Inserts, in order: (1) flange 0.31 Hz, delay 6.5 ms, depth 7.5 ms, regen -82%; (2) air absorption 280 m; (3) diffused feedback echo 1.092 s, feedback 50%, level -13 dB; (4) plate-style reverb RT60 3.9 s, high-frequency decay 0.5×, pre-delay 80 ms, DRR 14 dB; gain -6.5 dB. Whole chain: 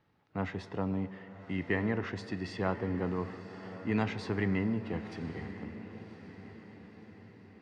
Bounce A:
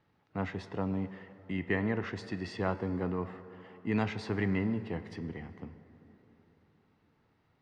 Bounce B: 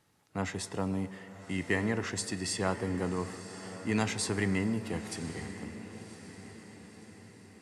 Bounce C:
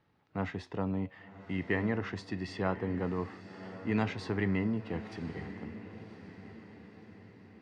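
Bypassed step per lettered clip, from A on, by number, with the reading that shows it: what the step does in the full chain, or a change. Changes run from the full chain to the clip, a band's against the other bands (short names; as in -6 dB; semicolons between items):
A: 3, echo-to-direct -9.5 dB to -14.0 dB; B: 2, 4 kHz band +8.0 dB; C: 4, echo-to-direct -9.5 dB to -12.0 dB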